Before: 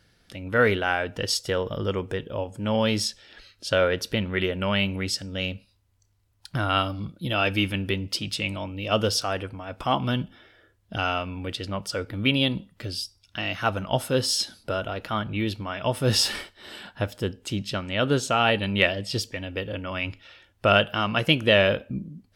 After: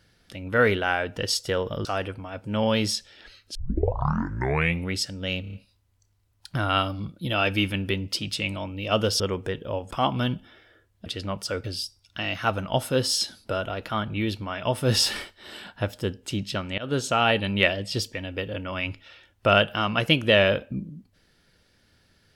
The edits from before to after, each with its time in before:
0:01.85–0:02.56: swap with 0:09.20–0:09.79
0:03.67: tape start 1.34 s
0:05.53: stutter 0.03 s, 5 plays
0:10.94–0:11.50: remove
0:12.08–0:12.83: remove
0:17.97–0:18.33: fade in equal-power, from −21.5 dB

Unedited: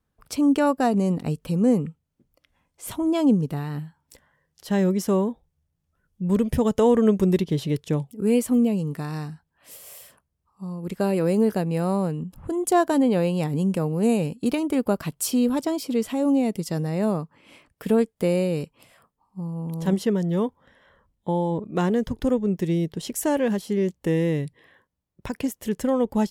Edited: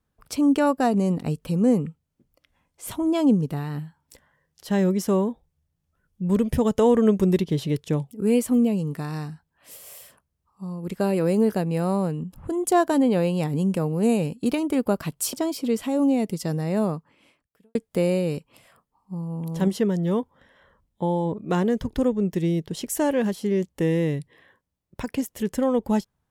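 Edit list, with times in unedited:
0:15.33–0:15.59: remove
0:17.20–0:18.01: fade out quadratic

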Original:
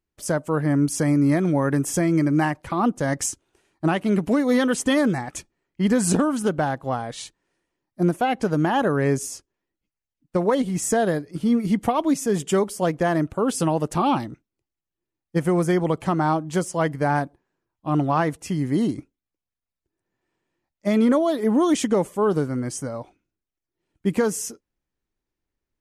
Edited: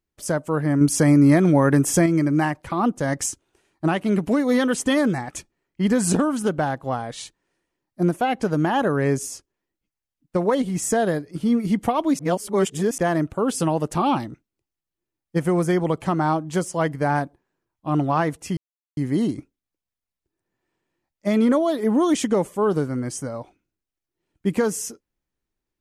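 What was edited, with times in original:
0:00.81–0:02.06: clip gain +4.5 dB
0:12.19–0:12.98: reverse
0:18.57: splice in silence 0.40 s

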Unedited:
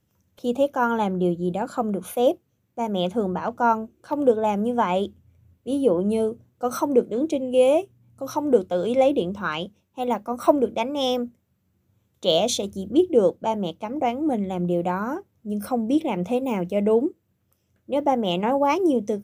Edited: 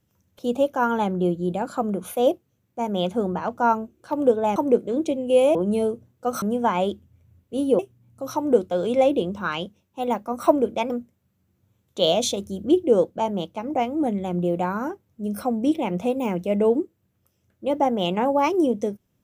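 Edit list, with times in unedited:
0:04.56–0:05.93: swap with 0:06.80–0:07.79
0:10.90–0:11.16: remove

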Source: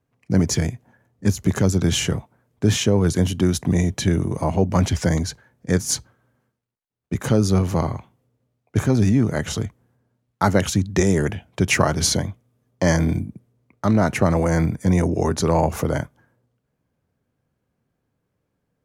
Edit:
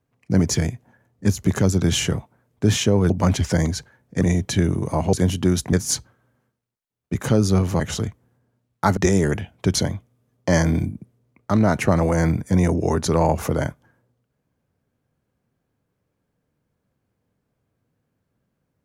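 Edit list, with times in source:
0:03.10–0:03.70: swap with 0:04.62–0:05.73
0:07.80–0:09.38: remove
0:10.55–0:10.91: remove
0:11.69–0:12.09: remove

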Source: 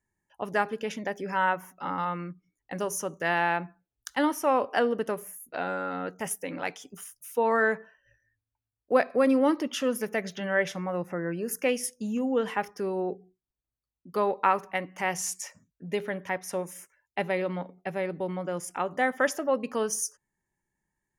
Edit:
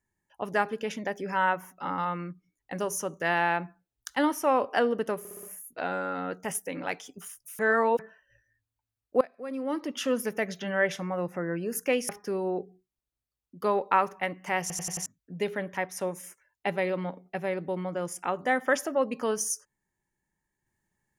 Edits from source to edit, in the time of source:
0:05.19: stutter 0.06 s, 5 plays
0:07.35–0:07.75: reverse
0:08.97–0:09.81: fade in quadratic, from −20 dB
0:11.85–0:12.61: remove
0:15.13: stutter in place 0.09 s, 5 plays

